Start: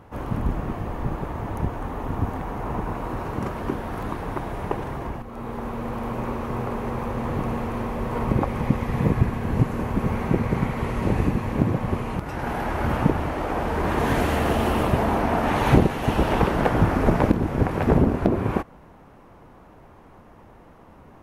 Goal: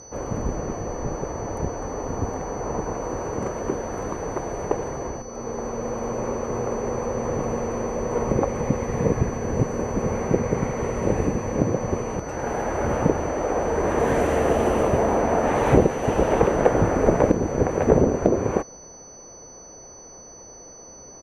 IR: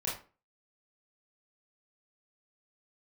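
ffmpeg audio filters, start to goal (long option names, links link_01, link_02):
-filter_complex "[0:a]aeval=exprs='val(0)+0.0126*sin(2*PI*6000*n/s)':channel_layout=same,equalizer=frequency=500:width_type=o:width=1:gain=11,equalizer=frequency=2000:width_type=o:width=1:gain=3,equalizer=frequency=4000:width_type=o:width=1:gain=-5,equalizer=frequency=8000:width_type=o:width=1:gain=10,asplit=2[link_01][link_02];[link_02]asetrate=33038,aresample=44100,atempo=1.33484,volume=-16dB[link_03];[link_01][link_03]amix=inputs=2:normalize=0,aemphasis=mode=reproduction:type=cd,volume=-4dB"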